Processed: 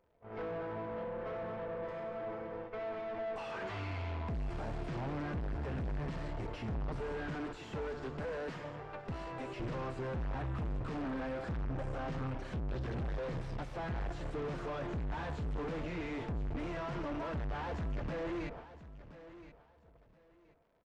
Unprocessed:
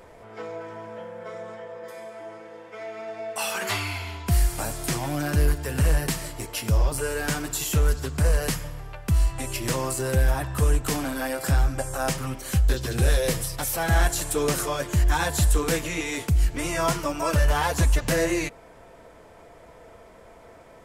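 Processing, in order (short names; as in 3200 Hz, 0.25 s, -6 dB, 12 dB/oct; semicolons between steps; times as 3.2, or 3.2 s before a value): gate -44 dBFS, range -26 dB; 7.35–9.6 HPF 260 Hz 12 dB/oct; tube stage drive 41 dB, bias 0.7; crackle 130/s -59 dBFS; tape spacing loss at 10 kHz 39 dB; feedback echo 1.023 s, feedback 23%, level -15 dB; gain +6.5 dB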